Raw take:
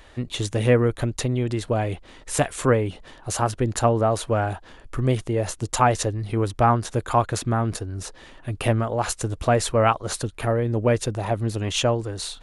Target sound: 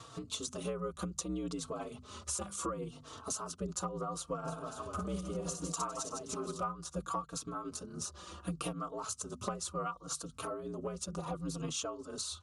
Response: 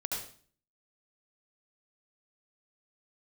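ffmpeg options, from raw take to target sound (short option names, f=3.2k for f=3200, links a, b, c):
-filter_complex "[0:a]lowpass=10k,asplit=3[a][b][c];[a]afade=t=out:st=4.44:d=0.02[d];[b]aecho=1:1:60|156|309.6|555.4|948.6:0.631|0.398|0.251|0.158|0.1,afade=t=in:st=4.44:d=0.02,afade=t=out:st=6.62:d=0.02[e];[c]afade=t=in:st=6.62:d=0.02[f];[d][e][f]amix=inputs=3:normalize=0,aeval=exprs='val(0)*sin(2*PI*62*n/s)':c=same,highpass=f=75:w=0.5412,highpass=f=75:w=1.3066,highshelf=f=7.7k:g=-8.5,bandreject=f=50:t=h:w=6,bandreject=f=100:t=h:w=6,bandreject=f=150:t=h:w=6,bandreject=f=200:t=h:w=6,bandreject=f=250:t=h:w=6,tremolo=f=6:d=0.41,firequalizer=gain_entry='entry(530,0);entry(840,-4);entry(1200,12);entry(1800,-13);entry(2700,-1);entry(6000,13)':delay=0.05:min_phase=1,acompressor=threshold=-39dB:ratio=6,asplit=2[g][h];[h]adelay=3.9,afreqshift=-0.69[i];[g][i]amix=inputs=2:normalize=1,volume=5.5dB"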